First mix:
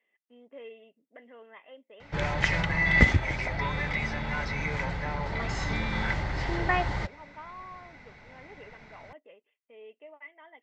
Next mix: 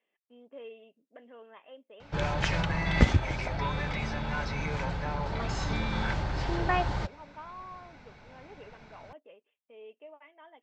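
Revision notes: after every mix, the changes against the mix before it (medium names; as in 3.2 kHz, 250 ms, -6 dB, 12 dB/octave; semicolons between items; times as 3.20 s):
master: add peaking EQ 2 kHz -13 dB 0.2 oct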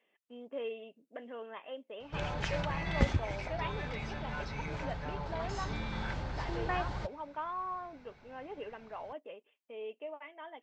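speech +6.5 dB; background -7.0 dB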